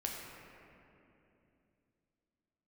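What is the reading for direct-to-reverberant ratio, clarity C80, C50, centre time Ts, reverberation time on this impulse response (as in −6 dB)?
−1.5 dB, 1.5 dB, 0.5 dB, 120 ms, 2.8 s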